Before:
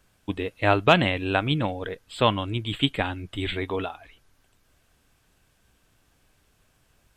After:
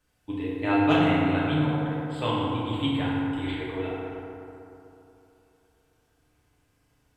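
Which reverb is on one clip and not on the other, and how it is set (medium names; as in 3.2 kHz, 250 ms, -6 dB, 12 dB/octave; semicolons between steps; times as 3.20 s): FDN reverb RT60 3 s, high-frequency decay 0.4×, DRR -8 dB; trim -12.5 dB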